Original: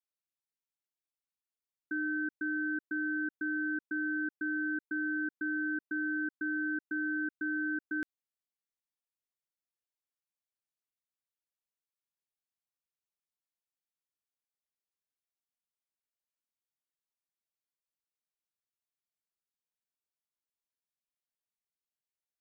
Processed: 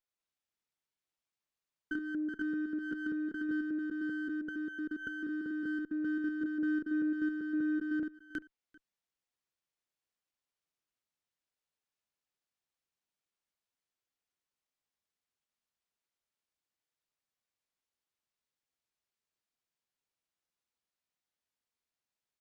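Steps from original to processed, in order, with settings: reverse delay 0.195 s, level 0 dB; 1.93–3.49 comb 4.9 ms, depth 33%; echo 0.392 s -23.5 dB; treble ducked by the level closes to 770 Hz, closed at -31 dBFS; running maximum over 3 samples

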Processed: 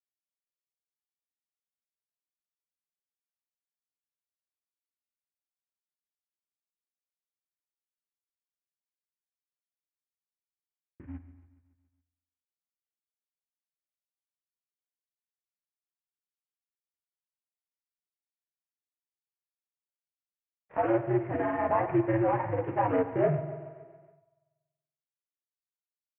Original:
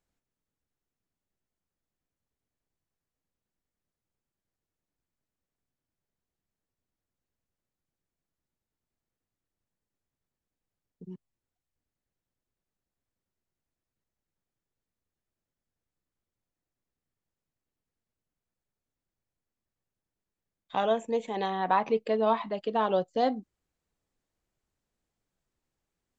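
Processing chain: CVSD 16 kbps; chorus voices 2, 1 Hz, delay 16 ms, depth 3 ms; grains 0.1 s, spray 29 ms, pitch spread up and down by 0 st; in parallel at +1.5 dB: limiter -25 dBFS, peak gain reduction 7 dB; on the sum: mistuned SSB -100 Hz 190–2200 Hz; spring tank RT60 1.7 s, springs 47 ms, chirp 30 ms, DRR 12 dB; expander -56 dBFS; on a send: feedback echo 0.14 s, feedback 59%, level -17 dB

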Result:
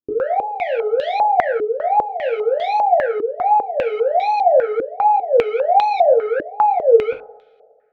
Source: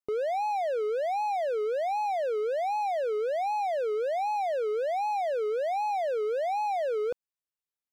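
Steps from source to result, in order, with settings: two-slope reverb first 0.31 s, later 2 s, from -27 dB, DRR -2.5 dB; stepped low-pass 5 Hz 330–3500 Hz; gain +4 dB

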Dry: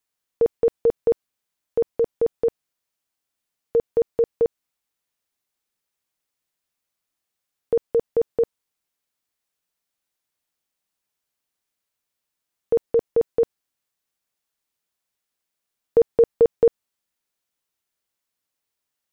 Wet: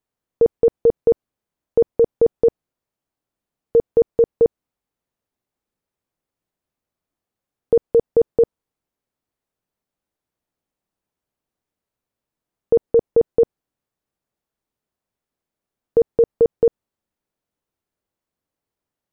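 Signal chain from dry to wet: tilt shelf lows +8.5 dB, about 1200 Hz; limiter -8 dBFS, peak gain reduction 5.5 dB

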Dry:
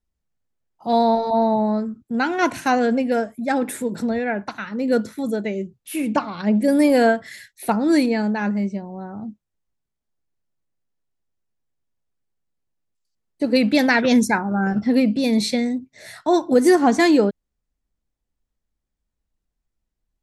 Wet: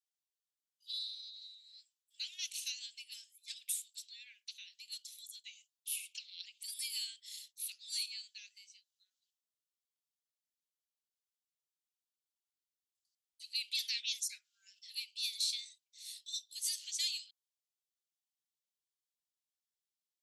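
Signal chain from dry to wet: steep high-pass 2900 Hz 48 dB/oct; limiter -20.5 dBFS, peak gain reduction 7 dB; gain -3.5 dB

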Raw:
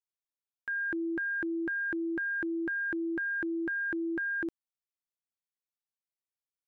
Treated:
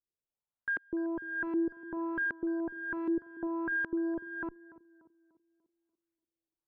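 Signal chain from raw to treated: tilt -2.5 dB/oct; one-sided clip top -33 dBFS, bottom -29 dBFS; LFO low-pass saw up 1.3 Hz 320–2000 Hz; on a send: tape echo 0.293 s, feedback 51%, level -15 dB, low-pass 1000 Hz; on the sum: gain -3.5 dB

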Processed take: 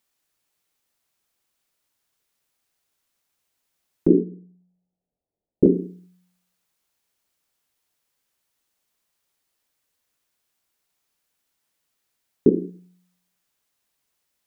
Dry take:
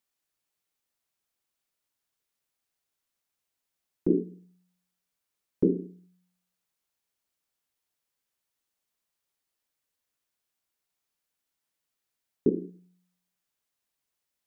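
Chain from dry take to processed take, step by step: 4.08–5.66 steep low-pass 770 Hz 48 dB/oct; gain +8 dB

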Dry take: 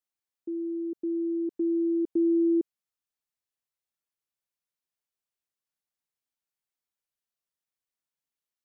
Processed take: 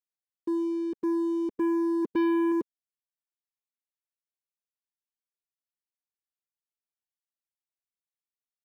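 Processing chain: reverb removal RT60 1.5 s; 2.02–2.52 dynamic EQ 220 Hz, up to +5 dB, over -42 dBFS, Q 1.3; sample leveller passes 3; gain -3.5 dB

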